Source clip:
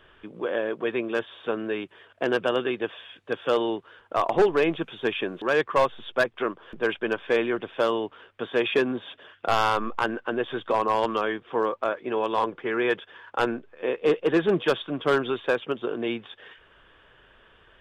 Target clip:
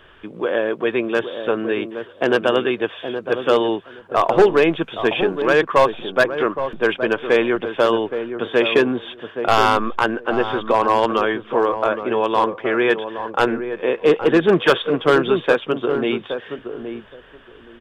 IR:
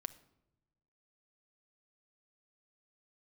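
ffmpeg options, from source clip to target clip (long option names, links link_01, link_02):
-filter_complex "[0:a]asettb=1/sr,asplit=3[link_01][link_02][link_03];[link_01]atrim=end=14.404[link_04];[link_02]atrim=start=14.4:end=15,asetpts=PTS-STARTPTS,afade=type=in:duration=0.004:curve=qsin,afade=type=out:start_time=0.596:duration=0.004:curve=qsin,adynamicequalizer=threshold=0.0141:dfrequency=1400:dqfactor=0.77:tfrequency=1400:tqfactor=0.77:attack=5:release=100:ratio=0.375:range=3:mode=boostabove:tftype=bell[link_05];[link_03]atrim=start=14.996[link_06];[link_04][link_05]acrossfade=duration=0.004:curve1=hsin:curve2=qsin[link_07];[link_07][link_06]acrossfade=duration=0.004:curve1=qsin:curve2=hsin,asoftclip=type=hard:threshold=-13.5dB,asplit=2[link_08][link_09];[link_09]adelay=820,lowpass=frequency=860:poles=1,volume=-7.5dB,asplit=2[link_10][link_11];[link_11]adelay=820,lowpass=frequency=860:poles=1,volume=0.18,asplit=2[link_12][link_13];[link_13]adelay=820,lowpass=frequency=860:poles=1,volume=0.18[link_14];[link_10][link_12][link_14]amix=inputs=3:normalize=0[link_15];[link_08][link_15]amix=inputs=2:normalize=0,volume=7dB"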